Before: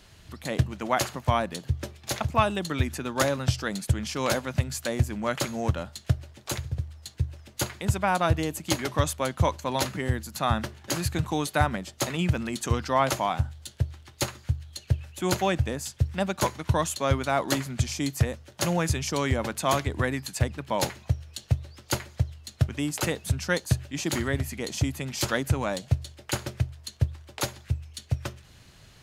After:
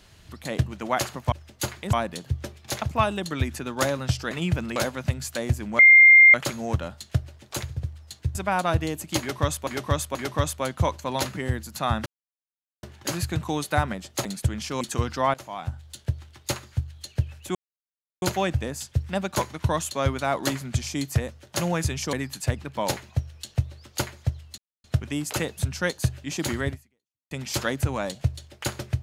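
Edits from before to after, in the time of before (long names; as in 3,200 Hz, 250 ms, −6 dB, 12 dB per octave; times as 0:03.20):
0:03.70–0:04.26: swap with 0:12.08–0:12.53
0:05.29: insert tone 2,110 Hz −8.5 dBFS 0.55 s
0:07.30–0:07.91: move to 0:01.32
0:08.75–0:09.23: repeat, 3 plays
0:10.66: splice in silence 0.77 s
0:13.06–0:13.71: fade in, from −21.5 dB
0:15.27: splice in silence 0.67 s
0:19.18–0:20.06: remove
0:22.51: splice in silence 0.26 s
0:24.36–0:24.98: fade out exponential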